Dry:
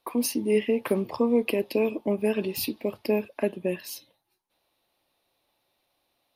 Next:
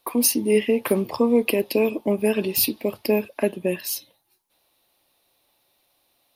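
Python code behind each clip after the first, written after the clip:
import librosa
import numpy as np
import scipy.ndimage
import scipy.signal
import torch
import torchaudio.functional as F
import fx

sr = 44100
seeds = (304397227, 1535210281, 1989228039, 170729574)

y = fx.high_shelf(x, sr, hz=5600.0, db=9.0)
y = y * 10.0 ** (4.0 / 20.0)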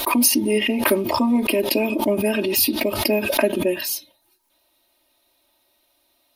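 y = x + 0.97 * np.pad(x, (int(3.2 * sr / 1000.0), 0))[:len(x)]
y = fx.pre_swell(y, sr, db_per_s=47.0)
y = y * 10.0 ** (-1.0 / 20.0)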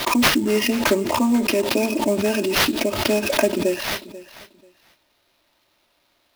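y = fx.sample_hold(x, sr, seeds[0], rate_hz=8000.0, jitter_pct=20)
y = fx.echo_feedback(y, sr, ms=488, feedback_pct=20, wet_db=-17.5)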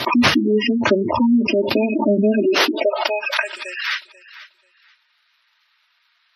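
y = fx.filter_sweep_highpass(x, sr, from_hz=86.0, to_hz=1500.0, start_s=1.82, end_s=3.45, q=1.7)
y = fx.spec_gate(y, sr, threshold_db=-15, keep='strong')
y = y * 10.0 ** (2.5 / 20.0)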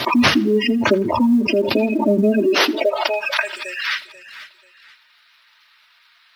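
y = fx.law_mismatch(x, sr, coded='mu')
y = fx.echo_feedback(y, sr, ms=82, feedback_pct=39, wet_db=-23.0)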